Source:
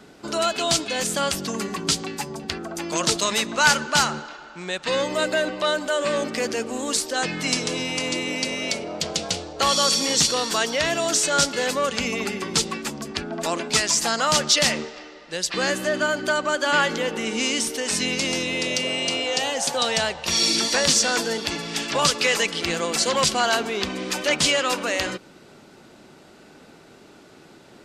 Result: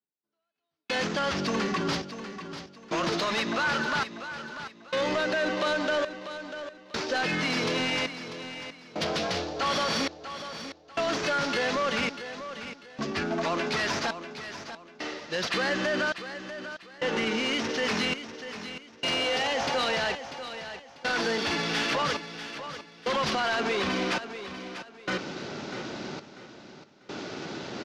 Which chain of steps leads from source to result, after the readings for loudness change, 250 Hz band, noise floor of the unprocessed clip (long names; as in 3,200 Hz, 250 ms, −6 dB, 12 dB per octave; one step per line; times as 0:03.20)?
−7.5 dB, −4.0 dB, −49 dBFS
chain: variable-slope delta modulation 32 kbit/s
high-pass filter 81 Hz
dynamic equaliser 1,600 Hz, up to +4 dB, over −38 dBFS, Q 0.9
reversed playback
upward compression, threshold −29 dBFS
reversed playback
brickwall limiter −19 dBFS, peak gain reduction 13 dB
gate pattern "....xxxxx" 67 BPM −60 dB
soft clipping −23.5 dBFS, distortion −16 dB
on a send: repeating echo 643 ms, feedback 30%, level −11 dB
on the sum: level +2.5 dB